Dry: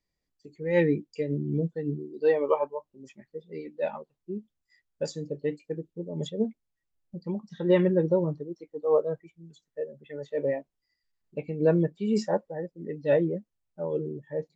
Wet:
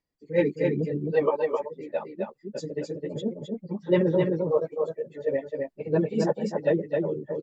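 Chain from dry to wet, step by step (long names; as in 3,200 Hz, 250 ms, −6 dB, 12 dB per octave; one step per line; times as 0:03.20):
time stretch by phase vocoder 0.51×
low-shelf EQ 110 Hz −9 dB
single-tap delay 262 ms −3.5 dB
one half of a high-frequency compander decoder only
level +5 dB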